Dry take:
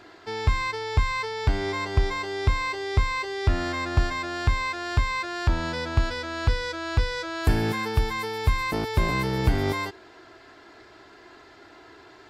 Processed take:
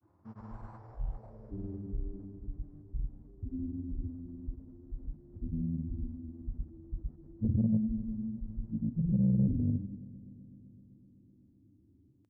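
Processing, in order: harmonic-percussive separation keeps harmonic; elliptic band-stop 210–6500 Hz, stop band 40 dB; in parallel at -2.5 dB: sample-rate reducer 3.1 kHz, jitter 20%; on the sum: low-pass sweep 1 kHz -> 240 Hz, 0.65–2.56 s; granulator 100 ms, pitch spread up and down by 0 st; saturation -14.5 dBFS, distortion -19 dB; high-pass 160 Hz 6 dB/octave; on a send: multi-head delay 127 ms, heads second and third, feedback 63%, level -22.5 dB

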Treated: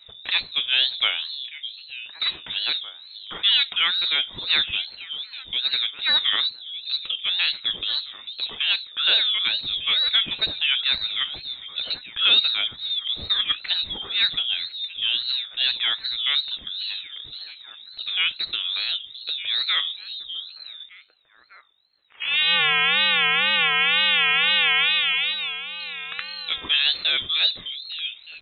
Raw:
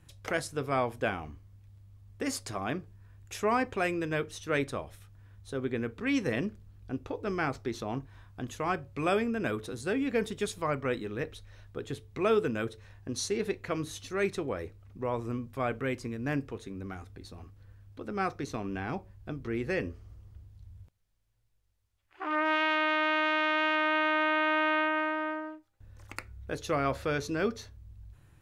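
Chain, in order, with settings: repeats whose band climbs or falls 603 ms, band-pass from 440 Hz, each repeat 1.4 oct, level -9 dB; frequency inversion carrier 3.9 kHz; wow and flutter 140 cents; trim +8 dB

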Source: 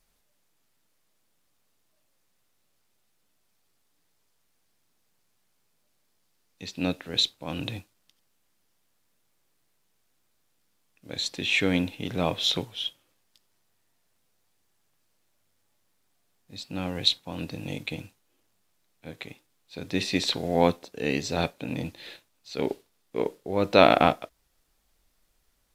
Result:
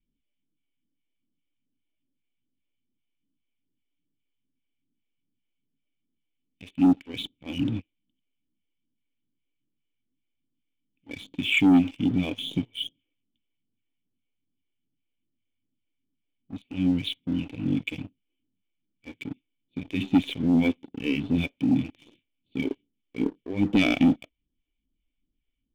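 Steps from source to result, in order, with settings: cascade formant filter i; phase shifter stages 2, 2.5 Hz, lowest notch 150–1900 Hz; waveshaping leveller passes 2; trim +8.5 dB

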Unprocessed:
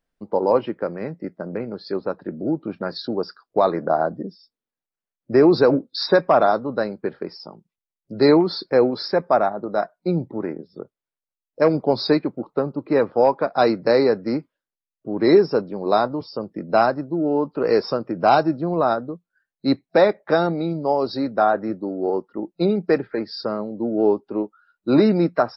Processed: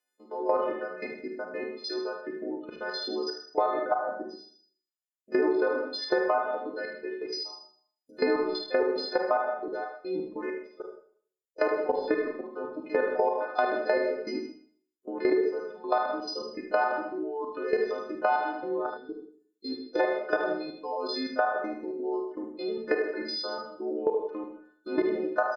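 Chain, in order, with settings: partials quantised in pitch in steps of 3 st; reverb removal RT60 1.5 s; Chebyshev high-pass 320 Hz, order 3; low-pass that closes with the level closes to 1.9 kHz, closed at -17 dBFS; level held to a coarse grid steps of 17 dB; Schroeder reverb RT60 0.53 s, combs from 31 ms, DRR 2.5 dB; time-frequency box 18.90–20.00 s, 510–3100 Hz -15 dB; on a send: delay 75 ms -6.5 dB; on the sum: compression 6:1, threshold -22 dBFS, peak gain reduction 10.5 dB

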